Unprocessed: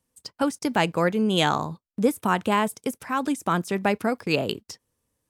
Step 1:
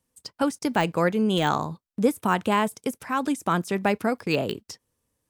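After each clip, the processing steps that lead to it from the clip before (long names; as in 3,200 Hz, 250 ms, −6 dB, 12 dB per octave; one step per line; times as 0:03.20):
de-essing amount 60%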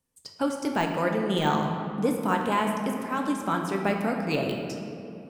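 convolution reverb RT60 2.8 s, pre-delay 7 ms, DRR 1.5 dB
level −4.5 dB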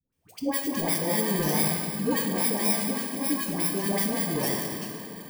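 samples in bit-reversed order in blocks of 32 samples
all-pass dispersion highs, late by 127 ms, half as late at 740 Hz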